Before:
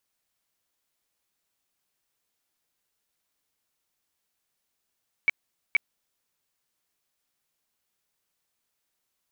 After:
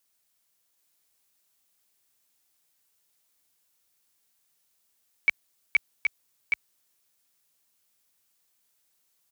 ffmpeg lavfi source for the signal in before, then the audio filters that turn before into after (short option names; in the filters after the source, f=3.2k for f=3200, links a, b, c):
-f lavfi -i "aevalsrc='0.158*sin(2*PI*2280*mod(t,0.47))*lt(mod(t,0.47),37/2280)':d=0.94:s=44100"
-filter_complex "[0:a]highpass=43,highshelf=f=4.5k:g=8.5,asplit=2[a][b];[b]aecho=0:1:771:0.631[c];[a][c]amix=inputs=2:normalize=0"